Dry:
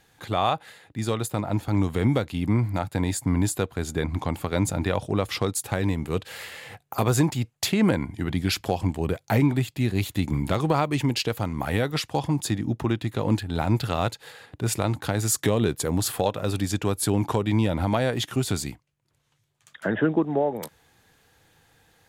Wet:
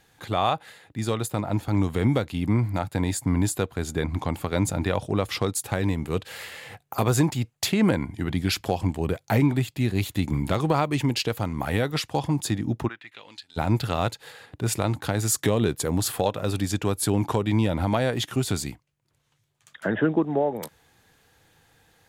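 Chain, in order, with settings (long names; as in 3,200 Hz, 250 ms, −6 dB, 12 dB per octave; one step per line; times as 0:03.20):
0:12.87–0:13.56: resonant band-pass 1,400 Hz → 6,100 Hz, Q 2.3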